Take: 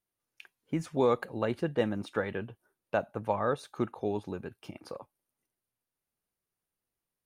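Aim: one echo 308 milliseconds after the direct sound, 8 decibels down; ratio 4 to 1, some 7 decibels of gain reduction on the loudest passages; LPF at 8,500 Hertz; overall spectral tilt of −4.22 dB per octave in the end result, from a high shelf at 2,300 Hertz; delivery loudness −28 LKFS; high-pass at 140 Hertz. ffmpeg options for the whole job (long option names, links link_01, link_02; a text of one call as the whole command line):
ffmpeg -i in.wav -af "highpass=140,lowpass=8500,highshelf=frequency=2300:gain=8.5,acompressor=threshold=-29dB:ratio=4,aecho=1:1:308:0.398,volume=8.5dB" out.wav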